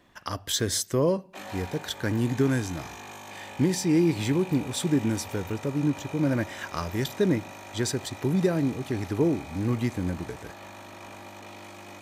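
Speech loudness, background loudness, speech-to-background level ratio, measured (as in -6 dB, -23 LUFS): -27.5 LUFS, -42.0 LUFS, 14.5 dB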